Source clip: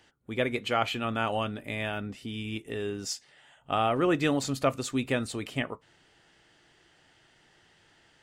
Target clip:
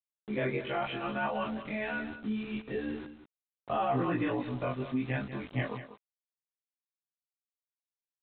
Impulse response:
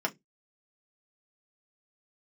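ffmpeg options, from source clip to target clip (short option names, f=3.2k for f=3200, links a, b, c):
-filter_complex "[0:a]afftfilt=real='re':imag='-im':win_size=2048:overlap=0.75,agate=range=-30dB:threshold=-55dB:ratio=16:detection=peak,lowpass=2k,bandreject=f=1.3k:w=7.8,afftdn=nr=35:nf=-53,flanger=delay=15.5:depth=5.7:speed=0.74,aresample=8000,aeval=exprs='val(0)*gte(abs(val(0)),0.00237)':c=same,aresample=44100,alimiter=level_in=5.5dB:limit=-24dB:level=0:latency=1:release=55,volume=-5.5dB,adynamicequalizer=threshold=0.00224:dfrequency=470:dqfactor=1.1:tfrequency=470:tqfactor=1.1:attack=5:release=100:ratio=0.375:range=3:mode=cutabove:tftype=bell,asplit=2[a][b];[b]aecho=0:1:192:0.251[c];[a][c]amix=inputs=2:normalize=0,volume=8.5dB"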